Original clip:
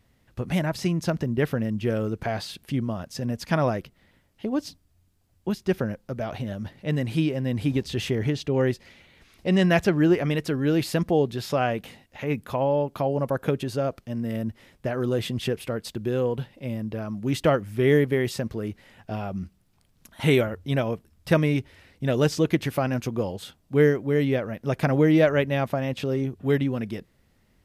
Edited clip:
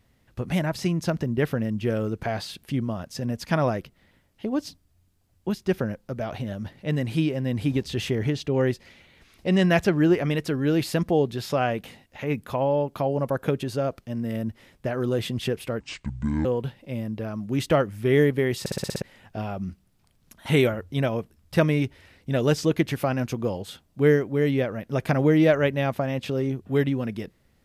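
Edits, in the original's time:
0:15.80–0:16.19: play speed 60%
0:18.34: stutter in place 0.06 s, 7 plays

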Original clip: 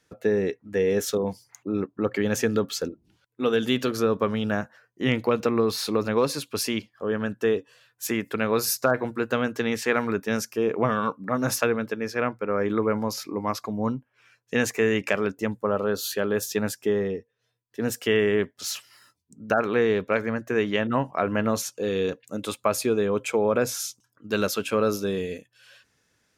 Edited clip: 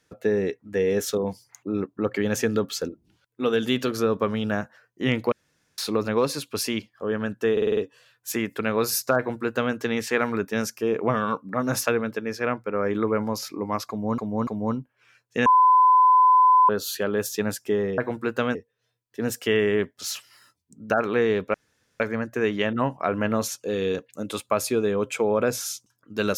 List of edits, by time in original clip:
0:05.32–0:05.78: fill with room tone
0:07.52: stutter 0.05 s, 6 plays
0:08.92–0:09.49: duplicate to 0:17.15
0:13.64–0:13.93: repeat, 3 plays
0:14.63–0:15.86: beep over 1,010 Hz −12.5 dBFS
0:20.14: splice in room tone 0.46 s

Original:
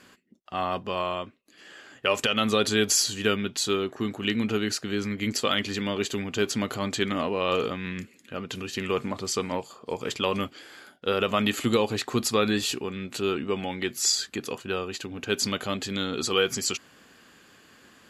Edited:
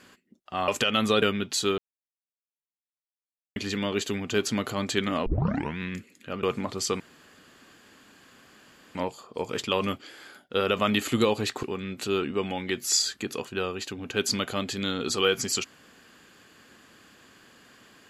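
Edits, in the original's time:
0:00.68–0:02.11: remove
0:02.65–0:03.26: remove
0:03.82–0:05.60: silence
0:07.30: tape start 0.52 s
0:08.47–0:08.90: remove
0:09.47: splice in room tone 1.95 s
0:12.15–0:12.76: remove

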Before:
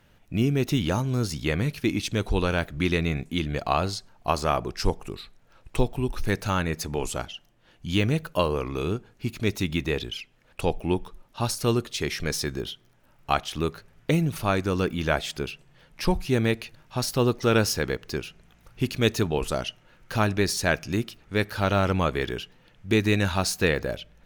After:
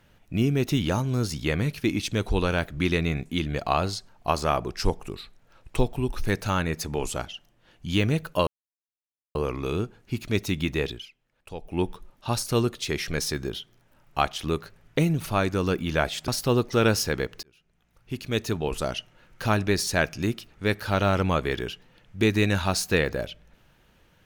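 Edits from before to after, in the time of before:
0:08.47: splice in silence 0.88 s
0:09.99–0:10.95: duck −12.5 dB, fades 0.21 s
0:15.40–0:16.98: remove
0:18.13–0:19.68: fade in

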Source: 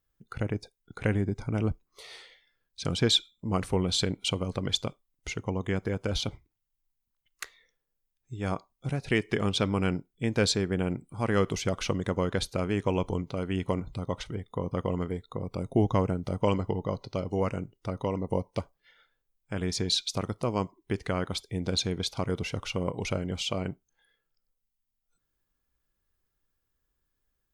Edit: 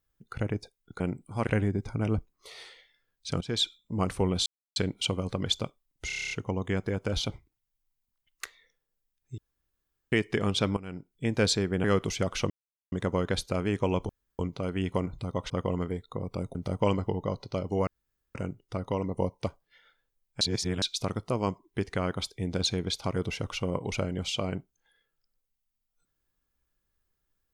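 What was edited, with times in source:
0:02.94–0:03.30: fade in, from −15.5 dB
0:03.99: splice in silence 0.30 s
0:05.30: stutter 0.03 s, 9 plays
0:08.37–0:09.11: fill with room tone
0:09.76–0:10.13: fade in quadratic, from −16.5 dB
0:10.83–0:11.30: move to 0:01.00
0:11.96: splice in silence 0.42 s
0:13.13: splice in room tone 0.30 s
0:14.24–0:14.70: remove
0:15.75–0:16.16: remove
0:17.48: splice in room tone 0.48 s
0:19.54–0:19.95: reverse

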